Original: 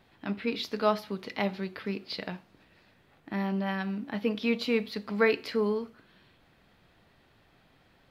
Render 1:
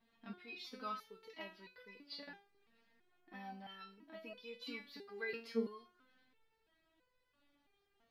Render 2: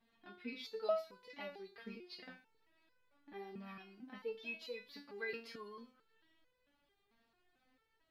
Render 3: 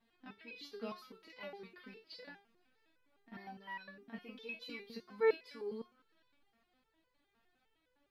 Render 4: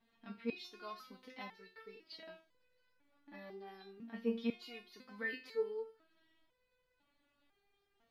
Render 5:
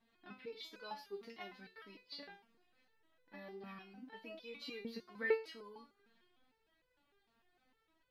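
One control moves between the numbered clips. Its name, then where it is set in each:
step-sequenced resonator, speed: 3, 4.5, 9.8, 2, 6.6 Hertz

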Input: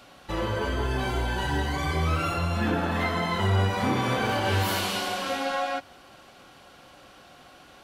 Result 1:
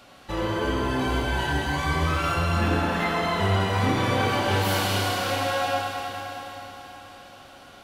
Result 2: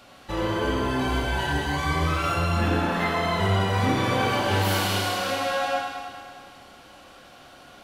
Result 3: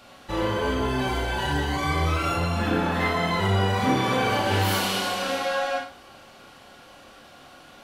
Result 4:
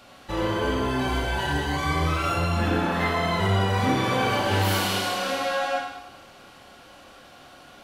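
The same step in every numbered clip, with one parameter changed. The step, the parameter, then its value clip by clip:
four-comb reverb, RT60: 4.4, 2, 0.32, 0.94 seconds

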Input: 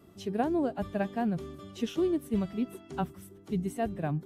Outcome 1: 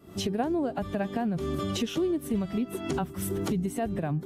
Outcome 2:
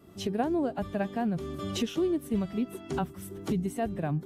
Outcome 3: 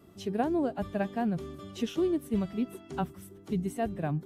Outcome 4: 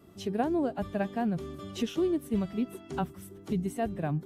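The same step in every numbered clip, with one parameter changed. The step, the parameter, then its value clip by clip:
camcorder AGC, rising by: 88, 34, 5, 13 dB per second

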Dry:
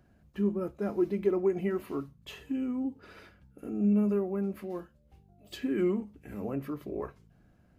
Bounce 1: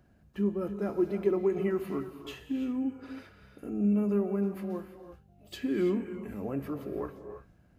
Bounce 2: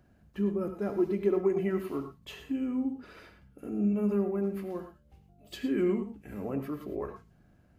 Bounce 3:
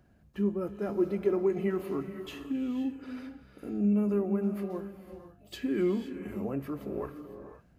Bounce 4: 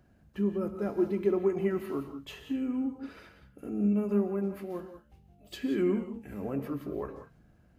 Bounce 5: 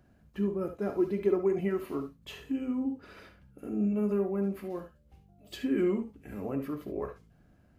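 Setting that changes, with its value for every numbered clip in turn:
reverb whose tail is shaped and stops, gate: 360, 130, 540, 210, 90 milliseconds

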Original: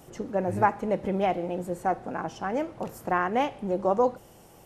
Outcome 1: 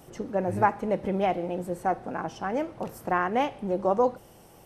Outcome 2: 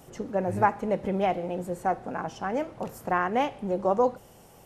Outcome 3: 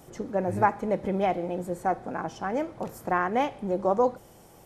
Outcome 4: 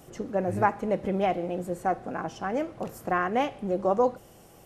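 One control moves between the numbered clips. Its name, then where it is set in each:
notch filter, centre frequency: 7,000, 330, 2,800, 900 Hertz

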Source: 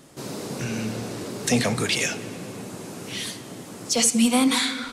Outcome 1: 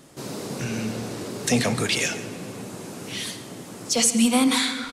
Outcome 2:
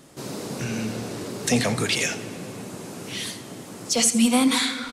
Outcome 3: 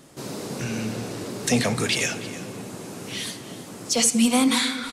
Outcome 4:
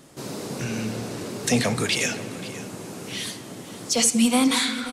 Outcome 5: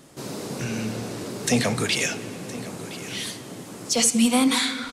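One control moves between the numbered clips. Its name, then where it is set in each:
single-tap delay, delay time: 138, 84, 320, 533, 1,016 milliseconds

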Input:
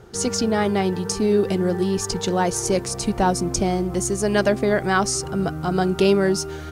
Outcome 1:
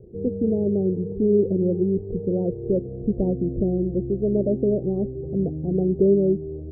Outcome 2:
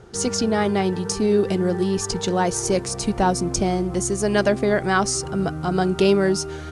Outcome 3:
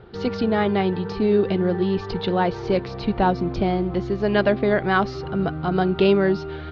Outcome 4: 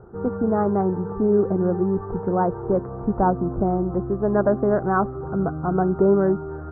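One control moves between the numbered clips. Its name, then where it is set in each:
Butterworth low-pass, frequency: 550, 11,000, 4,200, 1,400 Hertz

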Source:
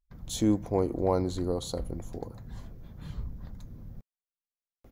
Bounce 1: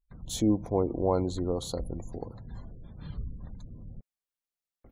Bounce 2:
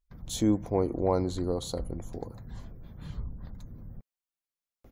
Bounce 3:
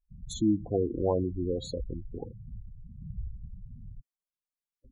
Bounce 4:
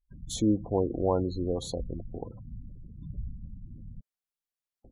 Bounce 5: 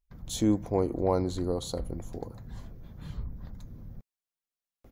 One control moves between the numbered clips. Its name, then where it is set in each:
gate on every frequency bin, under each frame's peak: −35, −50, −10, −20, −60 decibels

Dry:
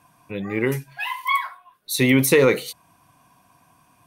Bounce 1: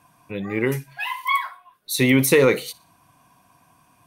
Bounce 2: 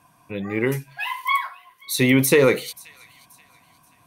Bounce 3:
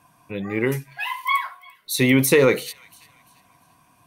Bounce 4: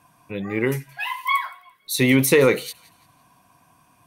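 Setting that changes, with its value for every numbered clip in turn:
delay with a high-pass on its return, delay time: 60, 531, 343, 170 milliseconds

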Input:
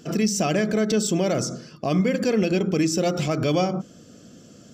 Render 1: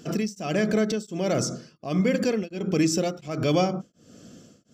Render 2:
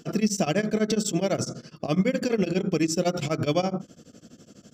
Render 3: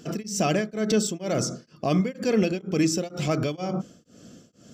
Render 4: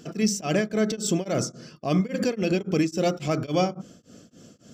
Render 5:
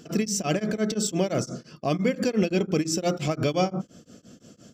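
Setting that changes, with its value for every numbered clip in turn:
tremolo along a rectified sine, nulls at: 1.4, 12, 2.1, 3.6, 5.8 Hertz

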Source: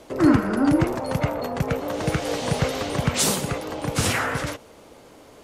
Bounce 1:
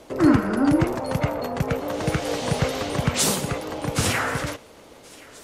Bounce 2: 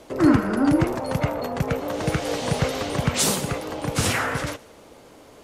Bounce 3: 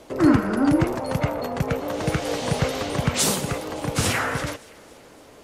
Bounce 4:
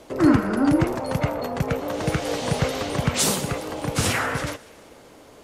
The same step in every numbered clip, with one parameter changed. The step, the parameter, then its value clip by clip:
delay with a high-pass on its return, delay time: 1,076, 75, 284, 191 milliseconds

